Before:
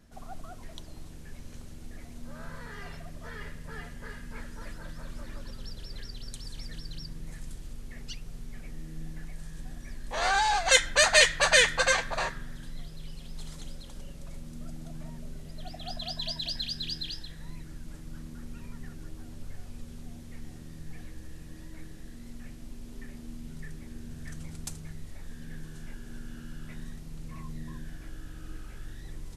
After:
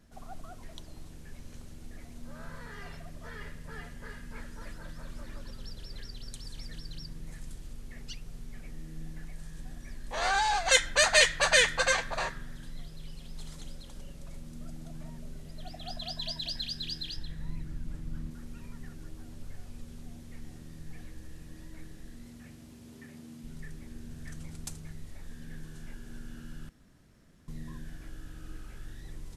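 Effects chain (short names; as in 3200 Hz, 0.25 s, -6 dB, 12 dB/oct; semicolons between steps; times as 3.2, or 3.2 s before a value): 17.16–18.31 tone controls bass +7 dB, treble -4 dB; 22.25–23.42 HPF 44 Hz -> 110 Hz 24 dB/oct; 26.69–27.48 room tone; gain -2 dB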